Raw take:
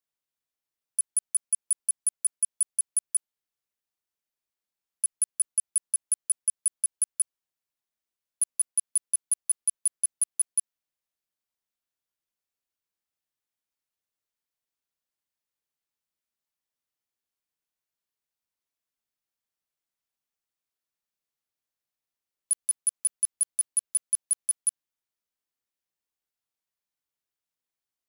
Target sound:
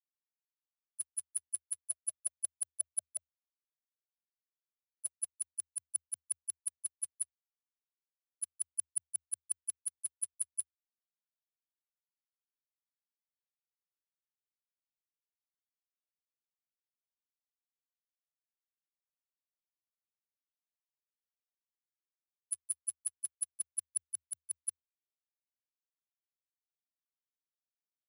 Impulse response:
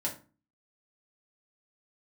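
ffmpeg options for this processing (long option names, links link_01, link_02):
-filter_complex "[0:a]agate=range=-28dB:threshold=-22dB:ratio=16:detection=peak,asettb=1/sr,asplit=3[link_01][link_02][link_03];[link_01]atrim=end=1.894[link_04];[link_02]atrim=start=1.89:end=5.33,asetpts=PTS-STARTPTS,afade=type=in:duration=0.004:curve=qsin,afade=type=out:start_time=3.436:duration=0.004:curve=qsin,equalizer=frequency=550:width_type=o:width=0.52:gain=13.5[link_05];[link_03]atrim=start=5.326[link_06];[link_04][link_05]acrossfade=duration=0.004:curve1=hsin:curve2=qsin[link_07];[link_07][link_06]acrossfade=duration=0.004:curve1=qsin:curve2=hsin,afreqshift=78,flanger=delay=1.3:depth=7.7:regen=21:speed=0.33:shape=sinusoidal"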